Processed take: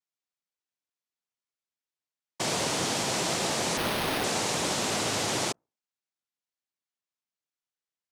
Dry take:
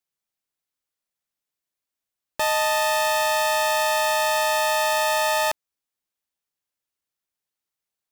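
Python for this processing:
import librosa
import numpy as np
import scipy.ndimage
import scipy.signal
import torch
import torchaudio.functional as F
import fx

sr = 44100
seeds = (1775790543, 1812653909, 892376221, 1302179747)

y = fx.hum_notches(x, sr, base_hz=60, count=5)
y = fx.noise_vocoder(y, sr, seeds[0], bands=2)
y = fx.resample_bad(y, sr, factor=6, down='none', up='hold', at=(3.77, 4.24))
y = y * librosa.db_to_amplitude(-7.0)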